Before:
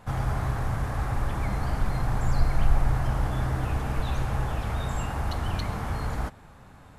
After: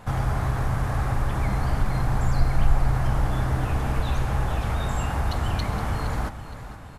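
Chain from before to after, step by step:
in parallel at −1 dB: downward compressor, threshold −31 dBFS, peak gain reduction 17 dB
on the sum: repeating echo 466 ms, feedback 41%, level −12.5 dB

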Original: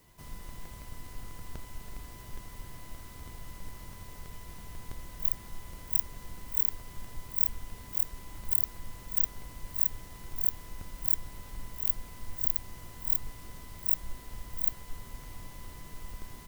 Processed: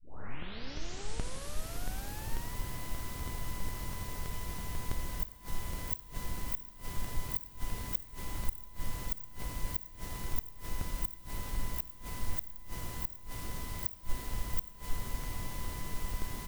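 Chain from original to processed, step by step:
turntable start at the beginning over 2.55 s
gate with flip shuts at −23 dBFS, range −28 dB
four-comb reverb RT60 3.9 s, combs from 30 ms, DRR 15 dB
level +6.5 dB

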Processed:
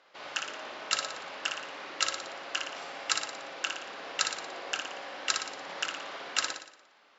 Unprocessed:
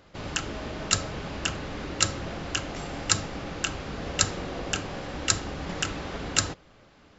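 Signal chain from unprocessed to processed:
band-pass filter 700–5,300 Hz
flutter between parallel walls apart 10 metres, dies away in 0.64 s
level −2.5 dB

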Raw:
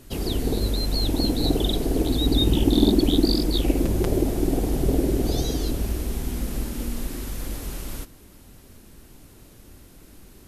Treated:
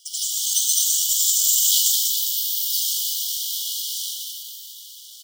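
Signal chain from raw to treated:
stylus tracing distortion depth 0.26 ms
parametric band 9,600 Hz +10 dB 0.91 octaves
comb filter 4.2 ms
echo with shifted repeats 413 ms, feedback 52%, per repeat +120 Hz, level −5 dB
convolution reverb RT60 2.9 s, pre-delay 139 ms, DRR −6.5 dB
bad sample-rate conversion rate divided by 6×, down none, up hold
wrong playback speed 7.5 ips tape played at 15 ips
linear-phase brick-wall high-pass 2,900 Hz

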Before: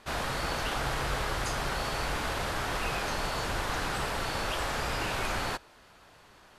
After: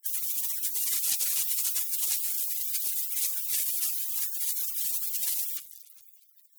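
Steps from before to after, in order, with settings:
in parallel at −4 dB: fuzz pedal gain 53 dB, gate −49 dBFS
on the sum: downward compressor 16 to 1, threshold −24 dBFS, peak gain reduction 9 dB
on a send at −15.5 dB: convolution reverb RT60 2.3 s, pre-delay 70 ms
on the sum: gate on every frequency bin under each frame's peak −30 dB weak
auto-filter notch saw up 2.4 Hz 470–1,900 Hz
sine wavefolder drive 4 dB, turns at −25 dBFS
low-shelf EQ 280 Hz −11.5 dB
level +8.5 dB

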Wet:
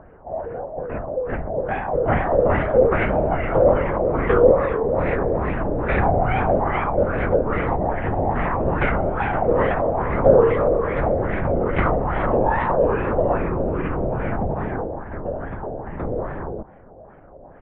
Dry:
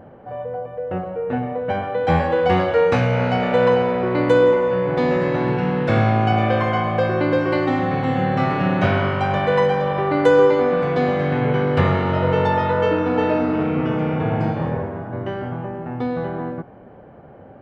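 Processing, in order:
linear-prediction vocoder at 8 kHz whisper
tape wow and flutter 130 cents
auto-filter low-pass sine 2.4 Hz 590–2,200 Hz
level −3.5 dB

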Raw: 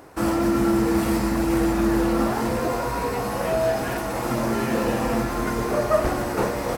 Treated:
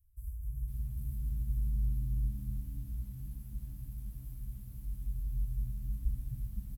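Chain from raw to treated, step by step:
inverse Chebyshev band-stop filter 320–3,400 Hz, stop band 80 dB
high-frequency loss of the air 52 metres
on a send: echo with shifted repeats 252 ms, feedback 32%, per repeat +75 Hz, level −11 dB
on the sum: feedback echo at a low word length 509 ms, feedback 55%, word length 10 bits, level −9 dB

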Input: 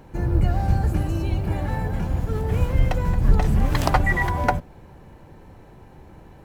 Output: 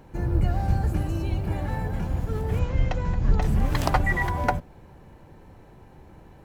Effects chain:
0:02.59–0:03.42: elliptic low-pass filter 7,000 Hz, stop band 40 dB
level −3 dB

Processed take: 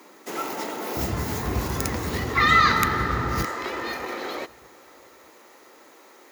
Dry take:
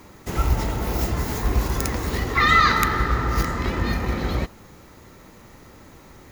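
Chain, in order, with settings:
high-pass filter 270 Hz 24 dB per octave, from 0:00.97 71 Hz, from 0:03.45 340 Hz
feedback echo with a low-pass in the loop 620 ms, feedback 30%, level −23 dB
level −1 dB

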